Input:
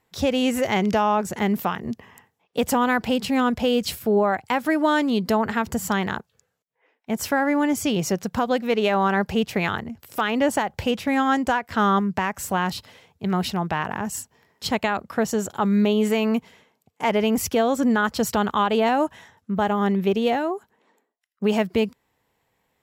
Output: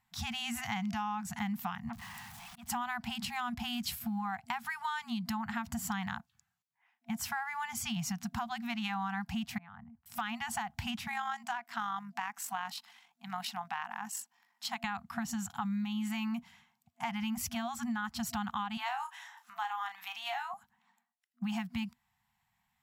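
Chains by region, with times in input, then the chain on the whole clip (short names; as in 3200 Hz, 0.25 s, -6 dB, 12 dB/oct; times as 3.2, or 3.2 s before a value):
1.89–2.7 zero-crossing step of -35.5 dBFS + auto swell 0.406 s + core saturation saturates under 980 Hz
3.43–4.37 bell 12000 Hz +5.5 dB 0.31 oct + backlash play -50.5 dBFS
9.58–10.06 LPF 1500 Hz + level quantiser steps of 22 dB + three-band expander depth 70%
11.07–14.84 HPF 280 Hz 24 dB/oct + AM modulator 48 Hz, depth 25%
18.77–20.54 HPF 750 Hz 24 dB/oct + upward compressor, threshold -35 dBFS + doubler 33 ms -8 dB
whole clip: FFT band-reject 240–680 Hz; bell 540 Hz -6 dB 0.44 oct; compressor, threshold -26 dBFS; gain -6.5 dB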